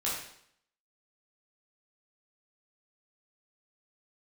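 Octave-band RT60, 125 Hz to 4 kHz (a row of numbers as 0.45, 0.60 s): 0.65, 0.70, 0.65, 0.65, 0.65, 0.65 s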